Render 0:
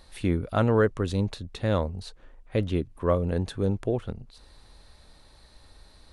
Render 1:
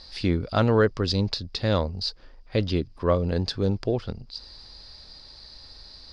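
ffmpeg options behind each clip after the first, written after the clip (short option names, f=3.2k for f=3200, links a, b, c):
-af "lowpass=f=4.9k:t=q:w=14,volume=1.5dB"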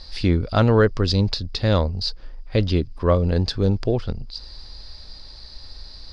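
-af "lowshelf=f=60:g=12,volume=3dB"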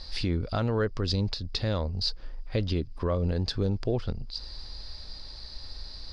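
-af "alimiter=limit=-15.5dB:level=0:latency=1:release=322,volume=-1.5dB"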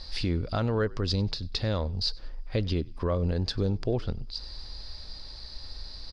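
-filter_complex "[0:a]asplit=3[a][b][c];[b]adelay=96,afreqshift=-52,volume=-24dB[d];[c]adelay=192,afreqshift=-104,volume=-33.1dB[e];[a][d][e]amix=inputs=3:normalize=0"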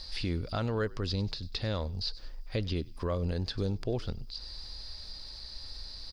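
-filter_complex "[0:a]aemphasis=mode=production:type=75kf,acrossover=split=3600[a][b];[b]acompressor=threshold=-41dB:ratio=4:attack=1:release=60[c];[a][c]amix=inputs=2:normalize=0,volume=-4.5dB"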